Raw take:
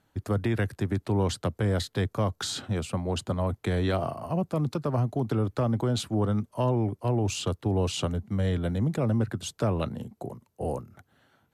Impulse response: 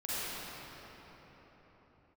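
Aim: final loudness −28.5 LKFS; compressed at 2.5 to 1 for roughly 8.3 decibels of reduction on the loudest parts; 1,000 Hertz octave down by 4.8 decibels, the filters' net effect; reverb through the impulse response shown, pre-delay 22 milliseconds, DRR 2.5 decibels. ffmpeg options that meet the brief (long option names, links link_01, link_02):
-filter_complex "[0:a]equalizer=frequency=1000:width_type=o:gain=-6.5,acompressor=threshold=-35dB:ratio=2.5,asplit=2[link_01][link_02];[1:a]atrim=start_sample=2205,adelay=22[link_03];[link_02][link_03]afir=irnorm=-1:irlink=0,volume=-9dB[link_04];[link_01][link_04]amix=inputs=2:normalize=0,volume=6dB"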